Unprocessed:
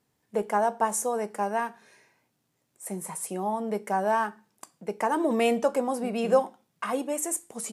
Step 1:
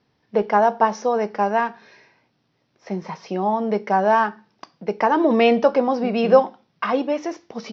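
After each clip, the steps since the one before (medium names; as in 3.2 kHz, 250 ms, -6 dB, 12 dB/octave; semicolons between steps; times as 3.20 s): steep low-pass 5.7 kHz 96 dB/octave; trim +8 dB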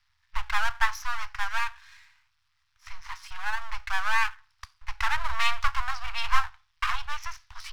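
half-wave rectifier; inverse Chebyshev band-stop 200–490 Hz, stop band 60 dB; trim +2.5 dB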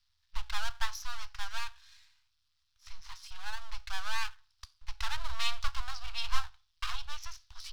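graphic EQ 125/250/500/1000/2000/4000 Hz -6/+11/-3/-7/-10/+5 dB; trim -3.5 dB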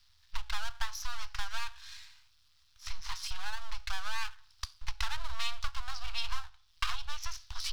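compression 4:1, threshold -39 dBFS, peak gain reduction 18 dB; trim +10.5 dB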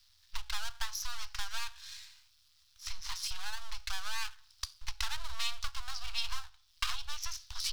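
treble shelf 3.5 kHz +10 dB; trim -4 dB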